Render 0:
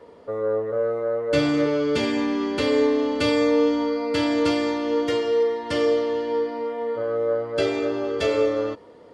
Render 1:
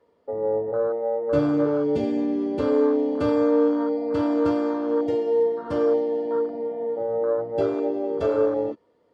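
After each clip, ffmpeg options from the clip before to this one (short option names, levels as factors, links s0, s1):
-af "afwtdn=0.0562"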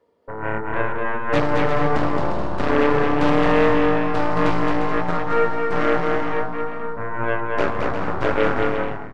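-filter_complex "[0:a]aeval=exprs='0.335*(cos(1*acos(clip(val(0)/0.335,-1,1)))-cos(1*PI/2))+0.0188*(cos(5*acos(clip(val(0)/0.335,-1,1)))-cos(5*PI/2))+0.106*(cos(7*acos(clip(val(0)/0.335,-1,1)))-cos(7*PI/2))+0.0422*(cos(8*acos(clip(val(0)/0.335,-1,1)))-cos(8*PI/2))':c=same,asplit=2[s0][s1];[s1]aecho=0:1:220|352|431.2|478.7|507.2:0.631|0.398|0.251|0.158|0.1[s2];[s0][s2]amix=inputs=2:normalize=0"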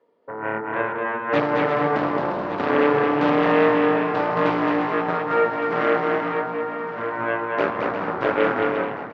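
-af "highpass=190,lowpass=3600,aecho=1:1:1164|2328|3492:0.251|0.0754|0.0226"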